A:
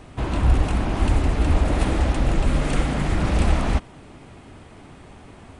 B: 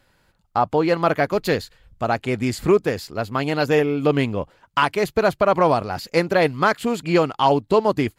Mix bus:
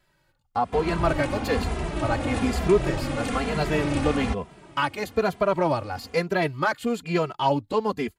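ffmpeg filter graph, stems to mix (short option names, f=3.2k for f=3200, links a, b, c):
-filter_complex "[0:a]highpass=f=130:p=1,adelay=550,volume=0dB[a];[1:a]volume=-2.5dB[b];[a][b]amix=inputs=2:normalize=0,asplit=2[c][d];[d]adelay=2.6,afreqshift=-1.1[e];[c][e]amix=inputs=2:normalize=1"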